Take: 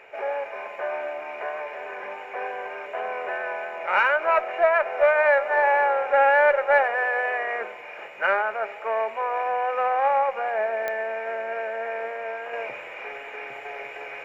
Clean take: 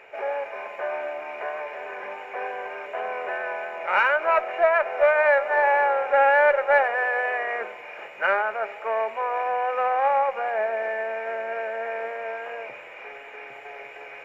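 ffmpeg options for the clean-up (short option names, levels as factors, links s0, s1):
-af "adeclick=t=4,asetnsamples=n=441:p=0,asendcmd='12.53 volume volume -4dB',volume=1"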